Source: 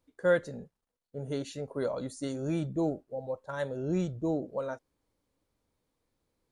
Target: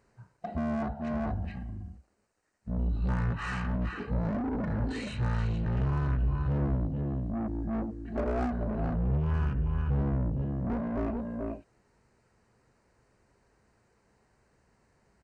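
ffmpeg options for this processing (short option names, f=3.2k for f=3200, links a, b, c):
-filter_complex "[0:a]bandreject=f=8k:w=5.5,aecho=1:1:185:0.355,alimiter=limit=-24dB:level=0:latency=1:release=298,asplit=2[a][b];[b]highpass=f=720:p=1,volume=23dB,asoftclip=type=tanh:threshold=-24dB[c];[a][c]amix=inputs=2:normalize=0,lowpass=f=6.1k:p=1,volume=-6dB,equalizer=f=125:t=o:w=1:g=10,equalizer=f=500:t=o:w=1:g=-5,equalizer=f=8k:t=o:w=1:g=-11,asetrate=18846,aresample=44100,volume=1.5dB"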